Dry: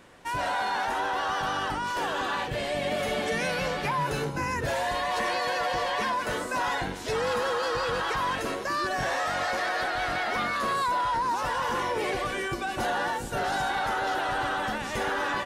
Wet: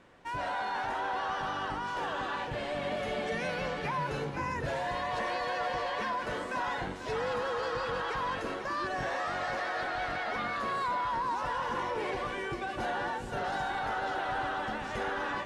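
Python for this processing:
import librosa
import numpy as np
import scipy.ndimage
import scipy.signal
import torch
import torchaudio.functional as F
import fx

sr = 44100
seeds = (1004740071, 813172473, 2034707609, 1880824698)

y = scipy.signal.sosfilt(scipy.signal.butter(2, 11000.0, 'lowpass', fs=sr, output='sos'), x)
y = fx.high_shelf(y, sr, hz=5500.0, db=-11.5)
y = y + 10.0 ** (-9.5 / 20.0) * np.pad(y, (int(493 * sr / 1000.0), 0))[:len(y)]
y = y * 10.0 ** (-5.0 / 20.0)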